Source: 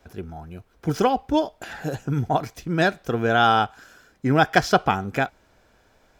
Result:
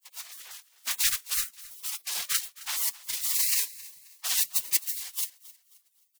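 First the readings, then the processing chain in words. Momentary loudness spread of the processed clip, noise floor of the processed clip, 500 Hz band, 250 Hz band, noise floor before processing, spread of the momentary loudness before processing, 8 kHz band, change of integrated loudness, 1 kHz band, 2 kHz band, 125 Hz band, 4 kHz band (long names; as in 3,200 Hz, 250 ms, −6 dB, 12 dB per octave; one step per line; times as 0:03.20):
17 LU, −67 dBFS, below −35 dB, below −40 dB, −61 dBFS, 14 LU, +15.0 dB, −4.5 dB, −26.5 dB, −12.5 dB, below −35 dB, 0.0 dB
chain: one scale factor per block 3 bits
random phases in short frames
in parallel at −11 dB: soft clipping −11.5 dBFS, distortion −15 dB
on the sum: gate on every frequency bin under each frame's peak −30 dB weak
on a send: repeating echo 265 ms, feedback 35%, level −19.5 dB
on the sum: wow of a warped record 78 rpm, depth 100 cents
level +7.5 dB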